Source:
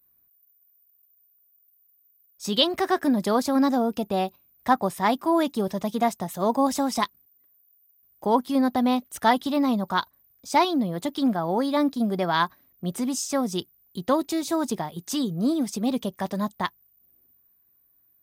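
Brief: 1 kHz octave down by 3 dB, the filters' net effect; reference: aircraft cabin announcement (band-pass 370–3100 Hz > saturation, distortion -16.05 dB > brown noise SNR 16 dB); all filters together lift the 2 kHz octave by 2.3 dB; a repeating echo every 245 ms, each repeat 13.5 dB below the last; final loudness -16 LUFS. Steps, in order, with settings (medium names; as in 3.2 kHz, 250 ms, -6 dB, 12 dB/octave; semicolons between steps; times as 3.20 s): band-pass 370–3100 Hz; peaking EQ 1 kHz -4.5 dB; peaking EQ 2 kHz +5 dB; feedback delay 245 ms, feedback 21%, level -13.5 dB; saturation -16 dBFS; brown noise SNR 16 dB; trim +14 dB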